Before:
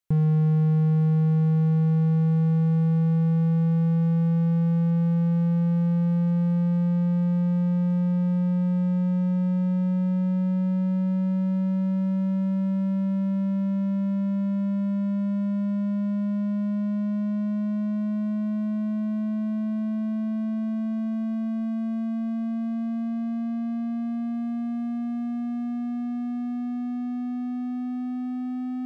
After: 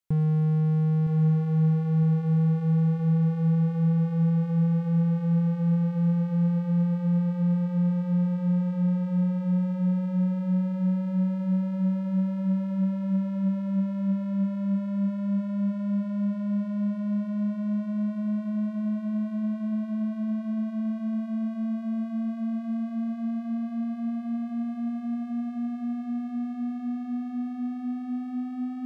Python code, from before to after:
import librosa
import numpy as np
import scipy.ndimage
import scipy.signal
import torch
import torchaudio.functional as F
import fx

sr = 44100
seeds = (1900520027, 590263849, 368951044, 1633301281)

y = fx.echo_feedback(x, sr, ms=963, feedback_pct=45, wet_db=-8.5)
y = y * 10.0 ** (-2.5 / 20.0)